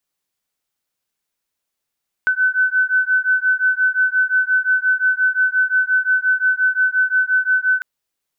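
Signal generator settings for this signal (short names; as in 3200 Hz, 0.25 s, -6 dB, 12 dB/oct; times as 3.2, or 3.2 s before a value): beating tones 1510 Hz, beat 5.7 Hz, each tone -17 dBFS 5.55 s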